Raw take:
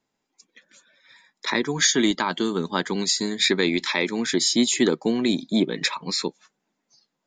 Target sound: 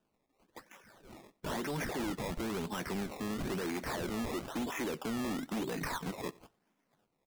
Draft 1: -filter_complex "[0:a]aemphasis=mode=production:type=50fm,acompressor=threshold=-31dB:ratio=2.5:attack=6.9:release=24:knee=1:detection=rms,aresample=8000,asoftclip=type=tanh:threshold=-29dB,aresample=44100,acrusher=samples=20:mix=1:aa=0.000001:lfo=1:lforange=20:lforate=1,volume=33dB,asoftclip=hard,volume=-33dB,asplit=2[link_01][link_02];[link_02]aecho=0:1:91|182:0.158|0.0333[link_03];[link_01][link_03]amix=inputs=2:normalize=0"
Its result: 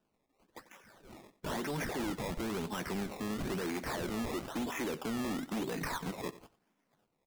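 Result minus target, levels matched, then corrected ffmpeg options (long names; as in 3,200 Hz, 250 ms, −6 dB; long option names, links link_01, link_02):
echo-to-direct +7 dB
-filter_complex "[0:a]aemphasis=mode=production:type=50fm,acompressor=threshold=-31dB:ratio=2.5:attack=6.9:release=24:knee=1:detection=rms,aresample=8000,asoftclip=type=tanh:threshold=-29dB,aresample=44100,acrusher=samples=20:mix=1:aa=0.000001:lfo=1:lforange=20:lforate=1,volume=33dB,asoftclip=hard,volume=-33dB,asplit=2[link_01][link_02];[link_02]aecho=0:1:91|182:0.0708|0.0149[link_03];[link_01][link_03]amix=inputs=2:normalize=0"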